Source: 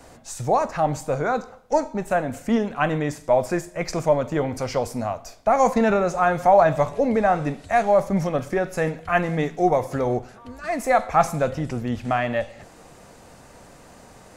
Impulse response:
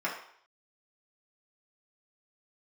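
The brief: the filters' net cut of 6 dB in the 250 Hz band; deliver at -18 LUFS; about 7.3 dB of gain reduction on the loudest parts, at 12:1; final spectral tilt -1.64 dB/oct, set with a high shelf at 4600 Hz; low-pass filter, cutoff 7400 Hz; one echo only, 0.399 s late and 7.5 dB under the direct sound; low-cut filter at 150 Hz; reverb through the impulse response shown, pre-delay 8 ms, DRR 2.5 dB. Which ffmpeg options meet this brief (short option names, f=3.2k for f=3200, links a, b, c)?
-filter_complex "[0:a]highpass=150,lowpass=7.4k,equalizer=f=250:t=o:g=-7,highshelf=f=4.6k:g=-7.5,acompressor=threshold=-19dB:ratio=12,aecho=1:1:399:0.422,asplit=2[a][b];[1:a]atrim=start_sample=2205,adelay=8[c];[b][c]afir=irnorm=-1:irlink=0,volume=-10.5dB[d];[a][d]amix=inputs=2:normalize=0,volume=7dB"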